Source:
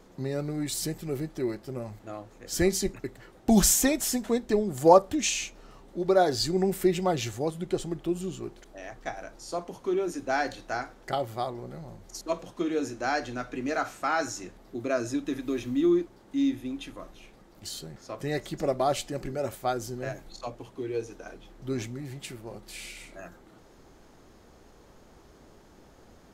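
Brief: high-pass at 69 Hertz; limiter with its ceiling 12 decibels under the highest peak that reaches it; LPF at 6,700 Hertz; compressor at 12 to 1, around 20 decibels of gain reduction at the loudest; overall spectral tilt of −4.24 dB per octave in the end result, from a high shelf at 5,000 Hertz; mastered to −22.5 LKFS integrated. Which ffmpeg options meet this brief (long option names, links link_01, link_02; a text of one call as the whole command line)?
ffmpeg -i in.wav -af "highpass=69,lowpass=6700,highshelf=frequency=5000:gain=7.5,acompressor=threshold=-32dB:ratio=12,volume=18dB,alimiter=limit=-12.5dB:level=0:latency=1" out.wav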